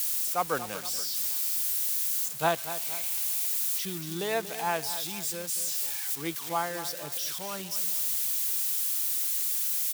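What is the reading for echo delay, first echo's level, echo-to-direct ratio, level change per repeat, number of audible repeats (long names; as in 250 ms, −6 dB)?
235 ms, −12.5 dB, −11.5 dB, −6.5 dB, 2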